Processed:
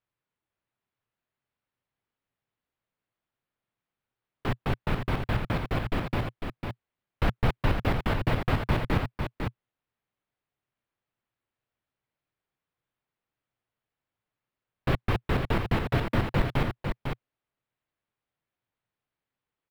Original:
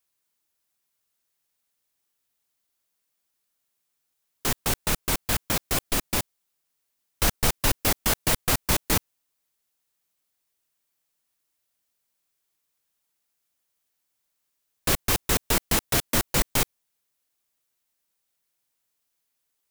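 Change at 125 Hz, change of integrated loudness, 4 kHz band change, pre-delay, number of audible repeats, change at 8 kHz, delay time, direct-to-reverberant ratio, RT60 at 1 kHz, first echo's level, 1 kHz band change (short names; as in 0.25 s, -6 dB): +4.5 dB, -5.5 dB, -11.0 dB, none, 1, under -25 dB, 0.501 s, none, none, -6.0 dB, -1.0 dB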